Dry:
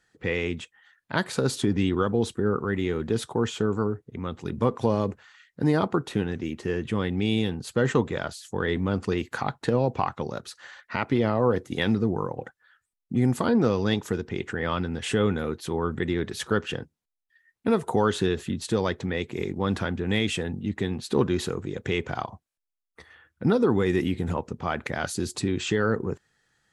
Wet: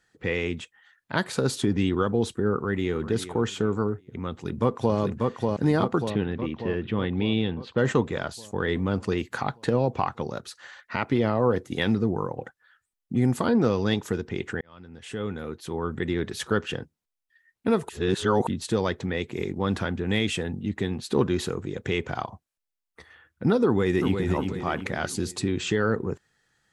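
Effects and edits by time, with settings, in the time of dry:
0:02.55–0:03.09: delay throw 400 ms, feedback 30%, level −12.5 dB
0:04.30–0:04.97: delay throw 590 ms, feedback 60%, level −2.5 dB
0:06.10–0:07.78: Chebyshev low-pass filter 3,700 Hz, order 3
0:14.61–0:16.21: fade in
0:17.89–0:18.47: reverse
0:23.65–0:24.24: delay throw 360 ms, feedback 45%, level −5.5 dB

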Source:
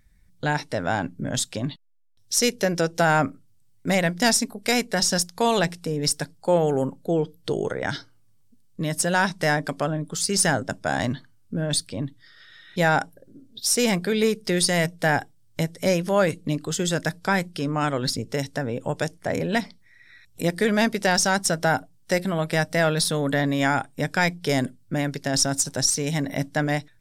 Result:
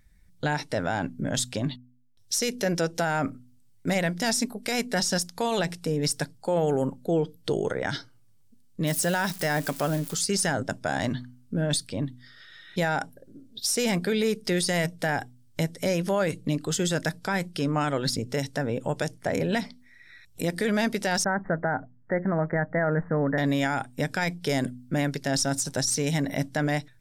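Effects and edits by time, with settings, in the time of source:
0:08.87–0:10.15: spike at every zero crossing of −26.5 dBFS
0:21.24–0:23.38: Butterworth low-pass 2,000 Hz 96 dB per octave
whole clip: notch filter 1,100 Hz, Q 21; hum removal 124 Hz, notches 2; brickwall limiter −16.5 dBFS

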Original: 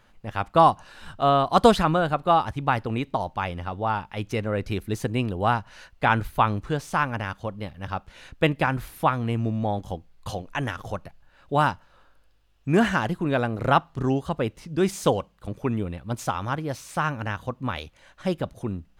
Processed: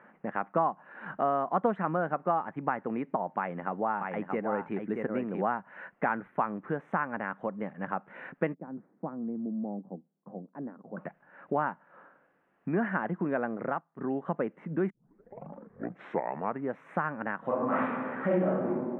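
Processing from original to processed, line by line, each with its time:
0:03.38–0:05.48: single-tap delay 628 ms −5 dB
0:08.54–0:10.97: four-pole ladder band-pass 250 Hz, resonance 30%
0:13.52–0:14.25: duck −19 dB, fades 0.30 s
0:14.90: tape start 1.96 s
0:17.40–0:18.66: thrown reverb, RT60 1.1 s, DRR −11 dB
whole clip: downward compressor 3 to 1, threshold −36 dBFS; elliptic band-pass filter 180–1,900 Hz, stop band 40 dB; level +6.5 dB

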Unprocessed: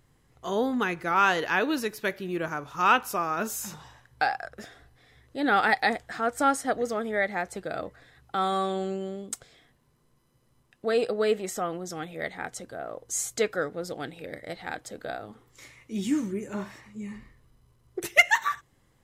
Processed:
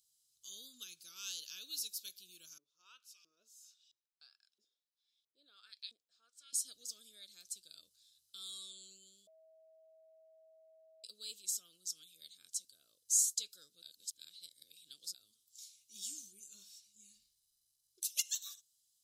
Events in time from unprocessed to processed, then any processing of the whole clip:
0:02.58–0:06.53: auto-filter band-pass saw up 1.5 Hz 330–3,100 Hz
0:09.27–0:11.04: beep over 642 Hz −13.5 dBFS
0:13.82–0:15.14: reverse
whole clip: inverse Chebyshev high-pass filter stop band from 2,100 Hz, stop band 40 dB; level +1 dB

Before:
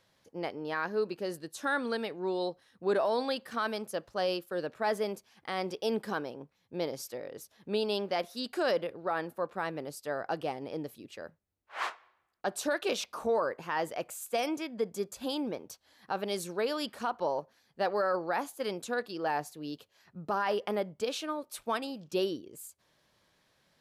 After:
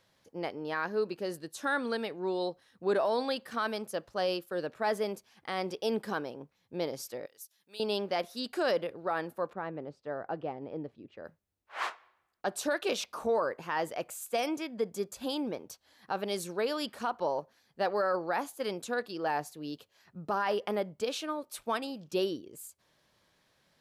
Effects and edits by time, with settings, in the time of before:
0:07.26–0:07.80: first-order pre-emphasis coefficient 0.97
0:09.53–0:11.25: head-to-tape spacing loss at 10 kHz 38 dB

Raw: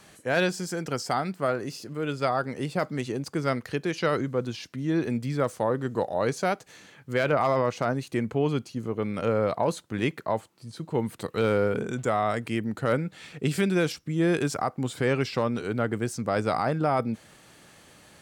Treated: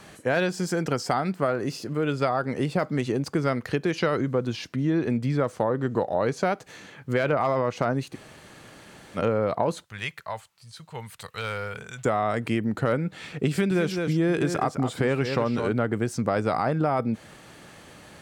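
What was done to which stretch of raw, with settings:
0:04.75–0:06.53: high-shelf EQ 8,800 Hz −7 dB
0:08.13–0:09.17: fill with room tone, crossfade 0.06 s
0:09.84–0:12.05: guitar amp tone stack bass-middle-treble 10-0-10
0:13.50–0:15.71: single-tap delay 207 ms −9.5 dB
whole clip: high-shelf EQ 3,600 Hz −6.5 dB; downward compressor 4 to 1, threshold −28 dBFS; level +7 dB

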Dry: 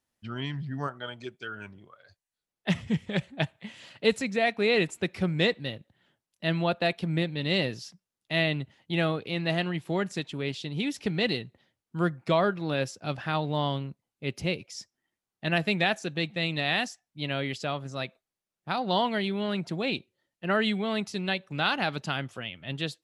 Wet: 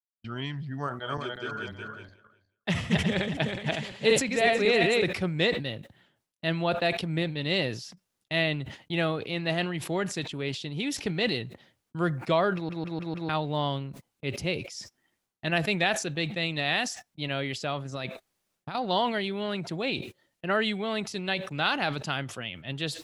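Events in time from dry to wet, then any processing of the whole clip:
0:00.81–0:05.04: feedback delay that plays each chunk backwards 183 ms, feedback 53%, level −1 dB
0:12.54: stutter in place 0.15 s, 5 plays
0:17.92–0:18.75: compressor whose output falls as the input rises −35 dBFS
whole clip: noise gate −46 dBFS, range −31 dB; dynamic equaliser 200 Hz, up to −4 dB, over −41 dBFS, Q 2.2; level that may fall only so fast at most 88 dB per second

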